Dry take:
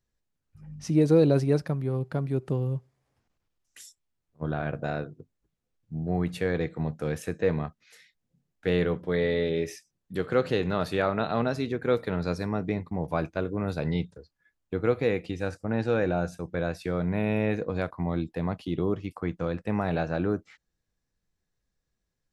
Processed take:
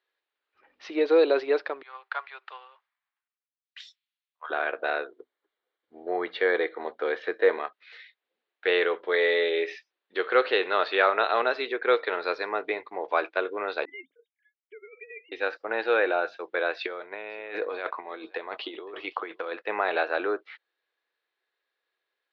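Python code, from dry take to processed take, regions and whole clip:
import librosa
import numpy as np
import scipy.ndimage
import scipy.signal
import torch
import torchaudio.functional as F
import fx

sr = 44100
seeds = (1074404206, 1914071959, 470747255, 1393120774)

y = fx.chain(x, sr, fx.highpass(hz=950.0, slope=24),
    fx.band_widen(depth_pct=70), at=(1.82, 4.5))
y = fx.chain(y, sr, fx.lowpass(hz=4800.0, slope=12),
    fx.low_shelf(hz=410.0, db=5.0),
    fx.notch(hz=2600.0, q=5.7), at=(5.08, 7.58))
y = fx.chain(y, sr, fx.sine_speech(),
    fx.vowel_filter(vowel='i'),
    fx.over_compress(threshold_db=-49.0, ratio=-1.0), at=(13.85, 15.32))
y = fx.chain(y, sr, fx.over_compress(threshold_db=-32.0, ratio=-0.5),
    fx.echo_single(ms=529, db=-24.0), at=(16.77, 19.53))
y = scipy.signal.sosfilt(scipy.signal.ellip(3, 1.0, 40, [380.0, 4000.0], 'bandpass', fs=sr, output='sos'), y)
y = fx.peak_eq(y, sr, hz=2100.0, db=10.0, octaves=2.9)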